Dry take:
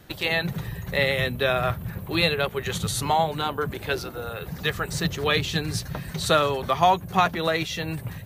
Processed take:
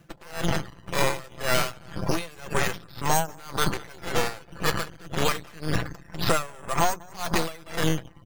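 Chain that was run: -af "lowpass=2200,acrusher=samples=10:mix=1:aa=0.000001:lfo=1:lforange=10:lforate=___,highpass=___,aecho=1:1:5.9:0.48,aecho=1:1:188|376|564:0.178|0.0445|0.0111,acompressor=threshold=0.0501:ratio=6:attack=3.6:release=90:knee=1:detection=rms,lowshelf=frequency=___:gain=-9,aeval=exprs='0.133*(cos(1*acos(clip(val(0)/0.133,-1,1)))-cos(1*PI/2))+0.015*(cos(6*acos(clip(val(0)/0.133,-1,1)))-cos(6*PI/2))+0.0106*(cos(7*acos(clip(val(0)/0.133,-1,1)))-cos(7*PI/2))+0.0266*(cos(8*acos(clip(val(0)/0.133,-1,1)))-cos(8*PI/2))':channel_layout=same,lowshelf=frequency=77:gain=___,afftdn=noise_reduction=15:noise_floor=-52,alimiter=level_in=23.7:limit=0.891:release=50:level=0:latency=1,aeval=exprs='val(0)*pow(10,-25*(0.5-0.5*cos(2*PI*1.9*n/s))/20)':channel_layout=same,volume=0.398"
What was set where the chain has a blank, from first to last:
0.27, 55, 400, 5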